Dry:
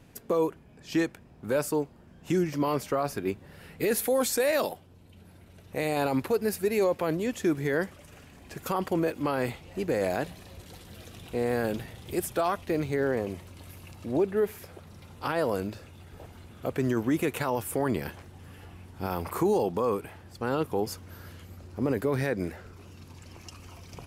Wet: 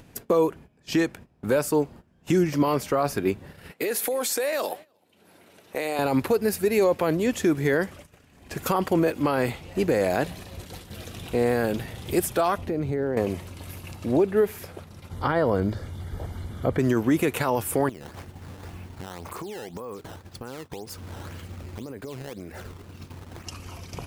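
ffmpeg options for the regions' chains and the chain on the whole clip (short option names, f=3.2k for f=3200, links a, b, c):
-filter_complex "[0:a]asettb=1/sr,asplit=3[a][b][c];[a]atrim=end=3.714[d];[b]atrim=start=3.71:end=5.99,asetpts=PTS-STARTPTS,afade=t=in:d=0.004:c=qsin,afade=t=out:st=2.276:d=0.004:c=qsin,highpass=330,acompressor=threshold=-30dB:ratio=10:attack=3.2:release=140:knee=1:detection=peak,aecho=1:1:307:0.0794,atrim=end_sample=100548[e];[c]atrim=start=5.986[f];[d][e]acrossfade=d=0.004:c1=hsin:c2=qsin[g];[g][f]acrossfade=d=0.004:c1=qsin:c2=hsin,asettb=1/sr,asplit=3[h][i][j];[h]atrim=end=12.584[k];[i]atrim=start=12.58:end=13.17,asetpts=PTS-STARTPTS,afade=t=in:d=0.004:c=qsin,afade=t=out:st=0.586:d=0.004:c=qsin,tiltshelf=f=1.2k:g=6,acompressor=threshold=-34dB:ratio=3:attack=3.2:release=140:knee=1:detection=peak[l];[j]atrim=start=13.166[m];[k][l]acrossfade=d=0.004:c1=hsin:c2=qsin[n];[n][m]acrossfade=d=0.004:c1=qsin:c2=hsin,asettb=1/sr,asplit=3[o][p][q];[o]atrim=end=15.114[r];[p]atrim=start=15.11:end=16.79,asetpts=PTS-STARTPTS,afade=t=in:d=0.004:c=qsin,afade=t=out:st=1.676:d=0.004:c=qsin,acrossover=split=3600[s][t];[t]acompressor=threshold=-60dB:ratio=4:attack=1:release=60[u];[s][u]amix=inputs=2:normalize=0,asuperstop=centerf=2600:order=4:qfactor=5.1,lowshelf=f=110:g=11[v];[q]atrim=start=16.786[w];[r][v]acrossfade=d=0.004:c1=hsin:c2=qsin[x];[x][w]acrossfade=d=0.004:c1=qsin:c2=hsin,asettb=1/sr,asplit=3[y][z][aa];[y]atrim=end=17.894[ab];[z]atrim=start=17.89:end=23.46,asetpts=PTS-STARTPTS,afade=t=in:d=0.004:c=qsin,afade=t=out:st=5.566:d=0.004:c=qsin,acompressor=threshold=-40dB:ratio=16:attack=3.2:release=140:knee=1:detection=peak,acrusher=samples=11:mix=1:aa=0.000001:lfo=1:lforange=17.6:lforate=1.9[ac];[aa]atrim=start=23.456[ad];[ab][ac]acrossfade=d=0.004:c1=hsin:c2=qsin[ae];[ae][ad]acrossfade=d=0.004:c1=qsin:c2=hsin,agate=range=-17dB:threshold=-47dB:ratio=16:detection=peak,acompressor=mode=upward:threshold=-47dB:ratio=2.5,alimiter=limit=-20dB:level=0:latency=1:release=359,volume=7.5dB"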